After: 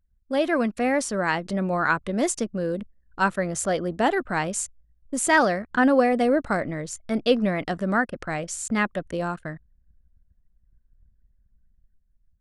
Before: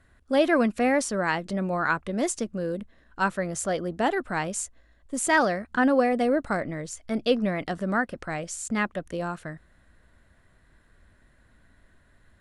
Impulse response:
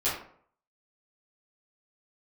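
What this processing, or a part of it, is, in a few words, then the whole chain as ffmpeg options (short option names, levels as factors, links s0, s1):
voice memo with heavy noise removal: -af "anlmdn=0.0158,dynaudnorm=f=430:g=5:m=1.78,volume=0.794"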